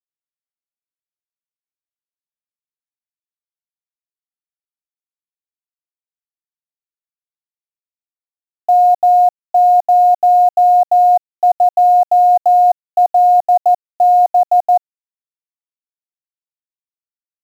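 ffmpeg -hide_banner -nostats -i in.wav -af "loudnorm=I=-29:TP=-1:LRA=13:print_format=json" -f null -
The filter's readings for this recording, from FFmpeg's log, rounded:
"input_i" : "-12.1",
"input_tp" : "-6.0",
"input_lra" : "10.9",
"input_thresh" : "-22.2",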